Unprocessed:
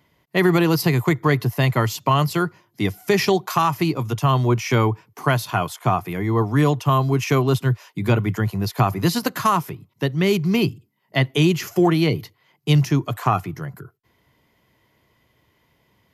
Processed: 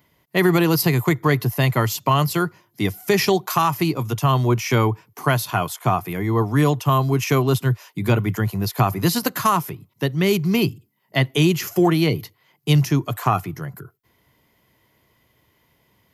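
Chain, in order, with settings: treble shelf 9.9 kHz +10 dB

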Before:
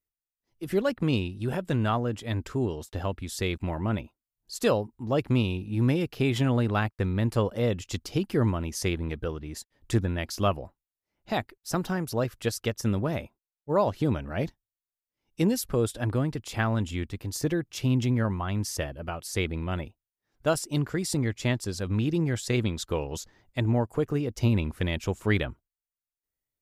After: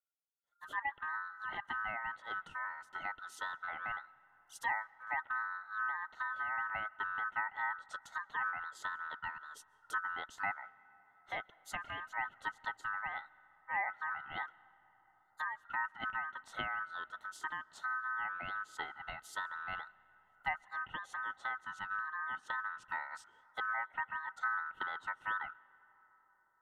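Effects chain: low-pass that closes with the level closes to 700 Hz, closed at -21 dBFS; static phaser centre 980 Hz, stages 6; ring modulator 1.4 kHz; on a send: reverberation RT60 5.4 s, pre-delay 95 ms, DRR 23 dB; on the sum: trim -6 dB

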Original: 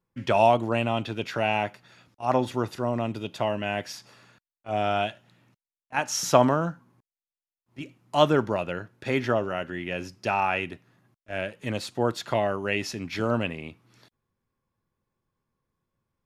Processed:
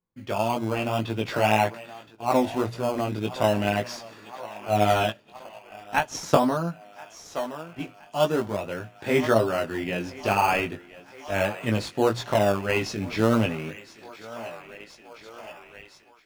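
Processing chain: treble shelf 10 kHz -7.5 dB; hum notches 60/120 Hz; on a send: thinning echo 1020 ms, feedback 72%, high-pass 420 Hz, level -17.5 dB; on the sum: level rider gain up to 14 dB; 5.08–6.35 s: transient shaper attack +8 dB, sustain -5 dB; chorus 1.8 Hz, delay 17.5 ms, depth 2.6 ms; in parallel at -8 dB: decimation with a swept rate 16×, swing 100% 0.41 Hz; on the sum: trim -5.5 dB

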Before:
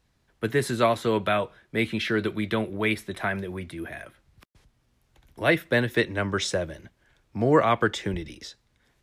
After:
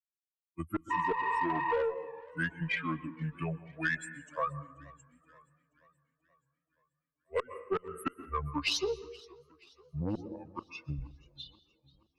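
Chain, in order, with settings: expander on every frequency bin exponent 3; spectral noise reduction 10 dB; inverted gate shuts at -18 dBFS, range -35 dB; speed mistake 45 rpm record played at 33 rpm; reverberation RT60 0.80 s, pre-delay 112 ms, DRR 18 dB; spectral replace 0.94–1.77 s, 760–4200 Hz after; peaking EQ 440 Hz +7.5 dB 0.93 oct; valve stage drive 22 dB, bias 0.3; compression, threshold -34 dBFS, peak gain reduction 9.5 dB; bass shelf 250 Hz -7 dB; modulated delay 479 ms, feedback 53%, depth 134 cents, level -23.5 dB; trim +7 dB

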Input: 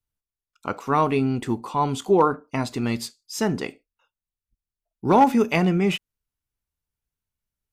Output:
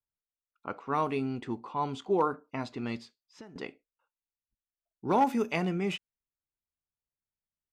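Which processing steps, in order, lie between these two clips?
level-controlled noise filter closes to 1.5 kHz, open at -15 dBFS; bass shelf 110 Hz -8.5 dB; 2.98–3.56 s: compression 6:1, threshold -39 dBFS, peak gain reduction 19 dB; trim -8.5 dB

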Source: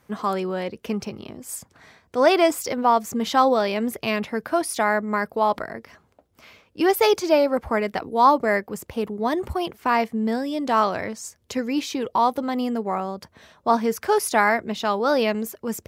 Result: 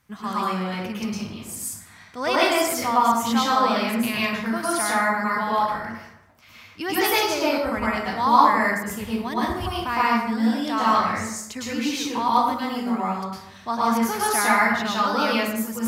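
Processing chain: peaking EQ 480 Hz -12.5 dB 1.6 oct; plate-style reverb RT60 0.81 s, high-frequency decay 0.6×, pre-delay 95 ms, DRR -7.5 dB; trim -2.5 dB

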